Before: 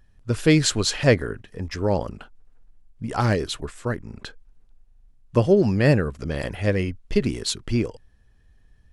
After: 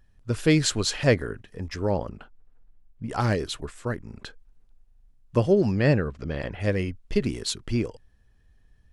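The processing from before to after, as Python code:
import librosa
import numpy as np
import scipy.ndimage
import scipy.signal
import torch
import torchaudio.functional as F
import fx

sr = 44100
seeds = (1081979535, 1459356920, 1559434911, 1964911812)

y = fx.high_shelf(x, sr, hz=4800.0, db=-11.5, at=(1.91, 3.1))
y = fx.lowpass(y, sr, hz=fx.line((5.71, 6900.0), (6.59, 3200.0)), slope=12, at=(5.71, 6.59), fade=0.02)
y = F.gain(torch.from_numpy(y), -3.0).numpy()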